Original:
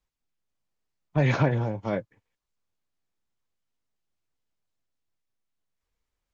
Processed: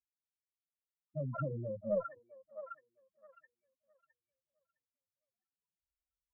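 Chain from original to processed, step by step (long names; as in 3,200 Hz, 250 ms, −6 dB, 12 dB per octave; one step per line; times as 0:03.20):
spectral peaks only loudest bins 4
band-pass filter sweep 3,400 Hz → 900 Hz, 0:01.10–0:02.41
harmonic generator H 5 −18 dB, 6 −16 dB, 8 −26 dB, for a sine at −21 dBFS
dynamic equaliser 920 Hz, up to −5 dB, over −58 dBFS, Q 0.78
echo through a band-pass that steps 661 ms, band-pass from 1,100 Hz, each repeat 0.7 octaves, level −2 dB
level +14 dB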